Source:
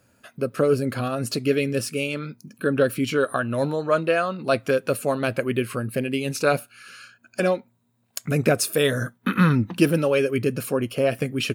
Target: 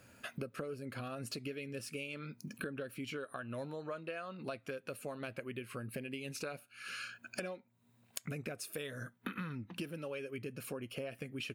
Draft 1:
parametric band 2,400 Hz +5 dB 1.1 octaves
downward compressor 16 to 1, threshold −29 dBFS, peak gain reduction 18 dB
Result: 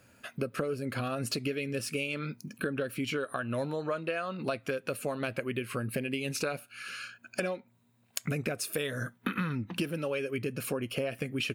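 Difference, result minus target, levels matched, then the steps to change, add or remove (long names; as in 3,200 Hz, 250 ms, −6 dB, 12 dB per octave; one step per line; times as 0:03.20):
downward compressor: peak gain reduction −9.5 dB
change: downward compressor 16 to 1, threshold −39 dBFS, peak gain reduction 27.5 dB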